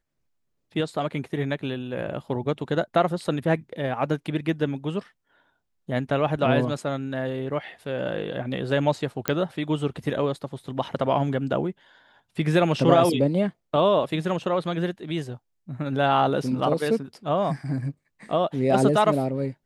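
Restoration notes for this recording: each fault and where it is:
9.28 s: pop -7 dBFS

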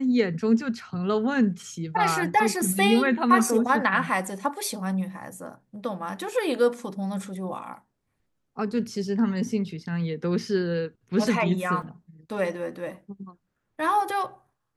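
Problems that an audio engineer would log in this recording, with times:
11.82 s: dropout 3.7 ms

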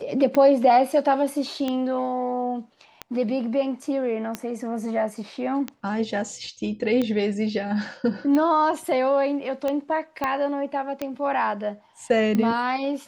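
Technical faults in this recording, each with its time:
tick 45 rpm -13 dBFS
10.24 s: pop -12 dBFS

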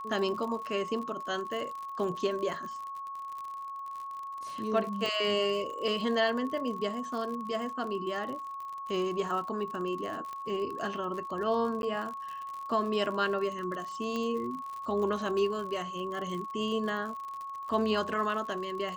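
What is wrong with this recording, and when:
crackle 64 per s -37 dBFS
whine 1.1 kHz -37 dBFS
5.06 s: pop
10.33 s: pop -27 dBFS
11.82–11.83 s: dropout 11 ms
14.16 s: pop -21 dBFS

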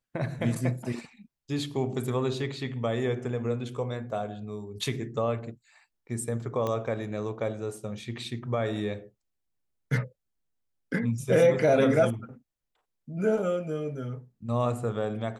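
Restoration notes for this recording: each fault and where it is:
6.67 s: pop -18 dBFS

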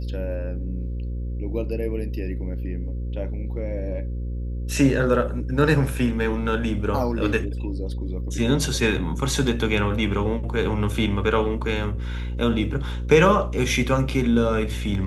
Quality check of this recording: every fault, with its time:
buzz 60 Hz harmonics 9 -28 dBFS

